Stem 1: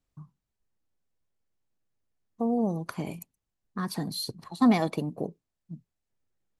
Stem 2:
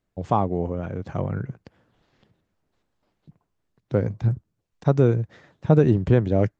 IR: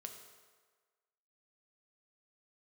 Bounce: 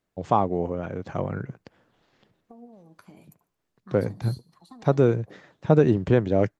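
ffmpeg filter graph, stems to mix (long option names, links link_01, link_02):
-filter_complex "[0:a]acompressor=threshold=-32dB:ratio=6,flanger=delay=2.4:depth=7.8:regen=47:speed=0.85:shape=sinusoidal,adelay=100,volume=-8.5dB,asplit=2[link_01][link_02];[link_02]volume=-20dB[link_03];[1:a]lowshelf=frequency=140:gain=-10.5,volume=1.5dB[link_04];[link_03]aecho=0:1:74|148|222|296|370|444:1|0.4|0.16|0.064|0.0256|0.0102[link_05];[link_01][link_04][link_05]amix=inputs=3:normalize=0"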